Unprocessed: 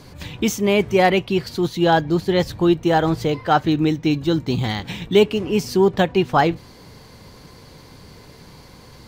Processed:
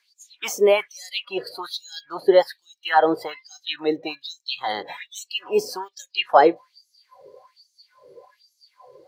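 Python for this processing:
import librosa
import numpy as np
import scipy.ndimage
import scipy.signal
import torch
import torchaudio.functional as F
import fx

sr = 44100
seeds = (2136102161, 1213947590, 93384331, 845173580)

y = fx.filter_lfo_highpass(x, sr, shape='sine', hz=1.2, low_hz=430.0, high_hz=6500.0, q=4.0)
y = fx.noise_reduce_blind(y, sr, reduce_db=19)
y = y * librosa.db_to_amplitude(-2.5)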